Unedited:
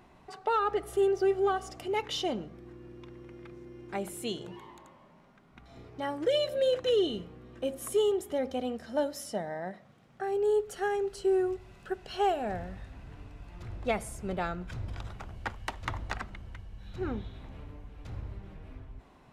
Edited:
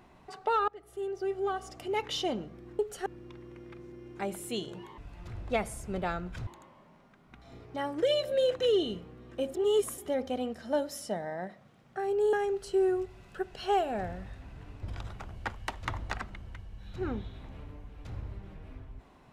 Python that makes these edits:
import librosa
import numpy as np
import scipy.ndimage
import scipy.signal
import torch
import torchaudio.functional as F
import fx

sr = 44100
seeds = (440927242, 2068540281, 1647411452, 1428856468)

y = fx.edit(x, sr, fx.fade_in_from(start_s=0.68, length_s=1.37, floor_db=-22.0),
    fx.reverse_span(start_s=7.78, length_s=0.44),
    fx.move(start_s=10.57, length_s=0.27, to_s=2.79),
    fx.move(start_s=13.33, length_s=1.49, to_s=4.71), tone=tone)